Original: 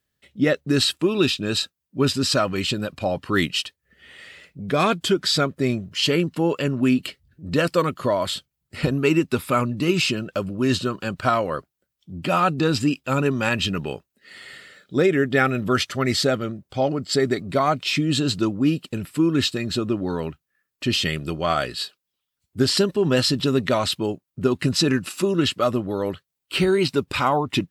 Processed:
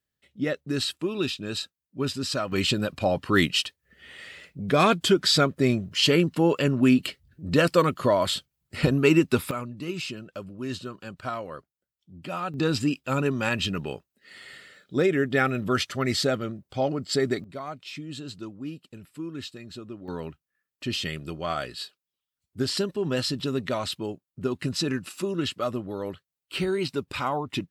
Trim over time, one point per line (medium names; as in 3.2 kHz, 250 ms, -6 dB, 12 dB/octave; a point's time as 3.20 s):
-8 dB
from 2.52 s 0 dB
from 9.51 s -12 dB
from 12.54 s -4 dB
from 17.44 s -16 dB
from 20.08 s -7.5 dB